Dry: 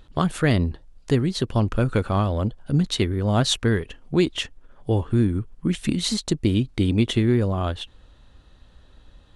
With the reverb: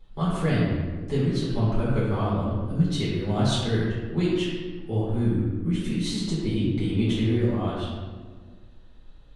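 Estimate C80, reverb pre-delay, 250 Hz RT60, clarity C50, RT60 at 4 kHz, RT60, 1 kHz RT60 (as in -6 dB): 1.0 dB, 3 ms, 2.1 s, -1.5 dB, 0.90 s, 1.6 s, 1.4 s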